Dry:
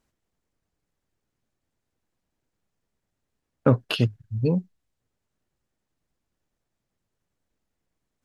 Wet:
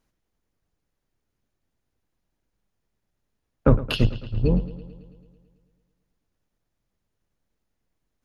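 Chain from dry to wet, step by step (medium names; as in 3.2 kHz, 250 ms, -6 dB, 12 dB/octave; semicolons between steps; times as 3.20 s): octave divider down 2 oct, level +1 dB; band-stop 7.9 kHz, Q 6.5; bucket-brigade echo 110 ms, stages 4096, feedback 66%, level -16 dB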